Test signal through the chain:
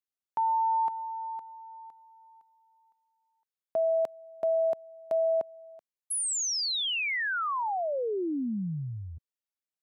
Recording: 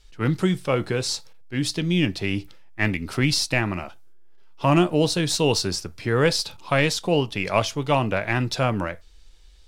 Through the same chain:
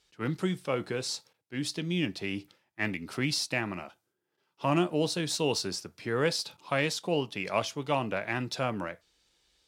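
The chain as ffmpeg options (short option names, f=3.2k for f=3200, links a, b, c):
-af "highpass=150,volume=-7.5dB"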